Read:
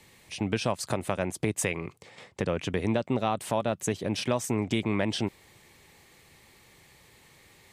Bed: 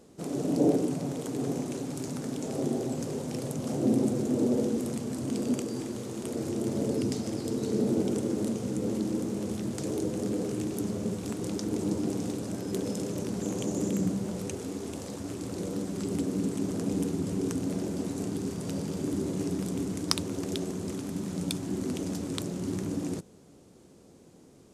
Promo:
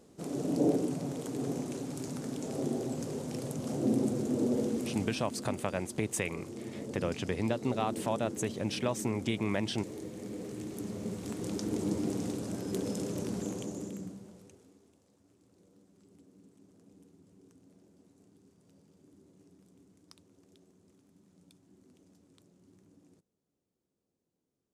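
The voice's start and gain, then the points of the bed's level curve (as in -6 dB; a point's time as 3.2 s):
4.55 s, -4.5 dB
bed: 5.04 s -3.5 dB
5.32 s -11.5 dB
10.15 s -11.5 dB
11.6 s -2.5 dB
13.36 s -2.5 dB
15 s -30 dB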